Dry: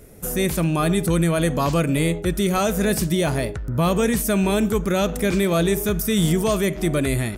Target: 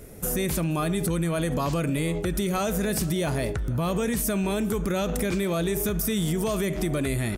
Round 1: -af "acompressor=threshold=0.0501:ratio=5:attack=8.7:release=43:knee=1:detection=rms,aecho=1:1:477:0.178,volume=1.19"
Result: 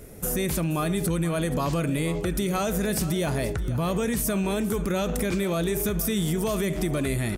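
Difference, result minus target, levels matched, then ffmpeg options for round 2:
echo-to-direct +8.5 dB
-af "acompressor=threshold=0.0501:ratio=5:attack=8.7:release=43:knee=1:detection=rms,aecho=1:1:477:0.0668,volume=1.19"

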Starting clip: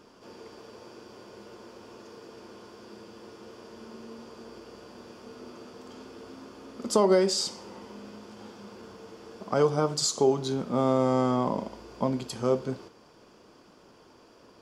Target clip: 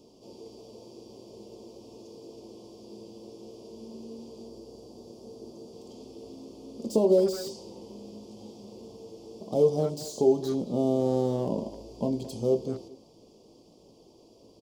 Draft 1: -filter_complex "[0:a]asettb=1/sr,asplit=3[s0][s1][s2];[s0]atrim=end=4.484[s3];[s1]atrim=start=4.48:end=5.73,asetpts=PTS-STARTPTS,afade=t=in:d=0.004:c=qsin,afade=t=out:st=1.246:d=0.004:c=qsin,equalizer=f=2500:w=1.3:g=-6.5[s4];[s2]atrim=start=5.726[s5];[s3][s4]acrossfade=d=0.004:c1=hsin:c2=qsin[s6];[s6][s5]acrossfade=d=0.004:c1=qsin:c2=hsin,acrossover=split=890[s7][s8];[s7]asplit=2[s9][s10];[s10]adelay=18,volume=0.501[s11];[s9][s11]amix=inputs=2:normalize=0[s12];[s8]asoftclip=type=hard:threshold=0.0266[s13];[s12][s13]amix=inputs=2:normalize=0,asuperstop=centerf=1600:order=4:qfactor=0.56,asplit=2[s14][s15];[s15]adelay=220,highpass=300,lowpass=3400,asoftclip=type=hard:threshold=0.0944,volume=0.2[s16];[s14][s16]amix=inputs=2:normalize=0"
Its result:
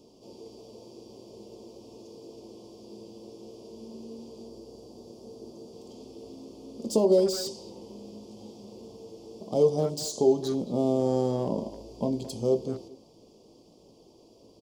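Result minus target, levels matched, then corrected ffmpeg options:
hard clipper: distortion -5 dB
-filter_complex "[0:a]asettb=1/sr,asplit=3[s0][s1][s2];[s0]atrim=end=4.484[s3];[s1]atrim=start=4.48:end=5.73,asetpts=PTS-STARTPTS,afade=t=in:d=0.004:c=qsin,afade=t=out:st=1.246:d=0.004:c=qsin,equalizer=f=2500:w=1.3:g=-6.5[s4];[s2]atrim=start=5.726[s5];[s3][s4]acrossfade=d=0.004:c1=hsin:c2=qsin[s6];[s6][s5]acrossfade=d=0.004:c1=qsin:c2=hsin,acrossover=split=890[s7][s8];[s7]asplit=2[s9][s10];[s10]adelay=18,volume=0.501[s11];[s9][s11]amix=inputs=2:normalize=0[s12];[s8]asoftclip=type=hard:threshold=0.0106[s13];[s12][s13]amix=inputs=2:normalize=0,asuperstop=centerf=1600:order=4:qfactor=0.56,asplit=2[s14][s15];[s15]adelay=220,highpass=300,lowpass=3400,asoftclip=type=hard:threshold=0.0944,volume=0.2[s16];[s14][s16]amix=inputs=2:normalize=0"

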